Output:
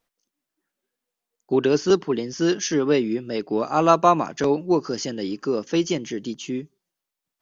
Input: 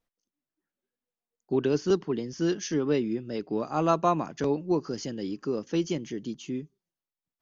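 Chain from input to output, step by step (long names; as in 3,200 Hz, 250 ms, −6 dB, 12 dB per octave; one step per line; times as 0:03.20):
low-shelf EQ 260 Hz −8.5 dB
level +9 dB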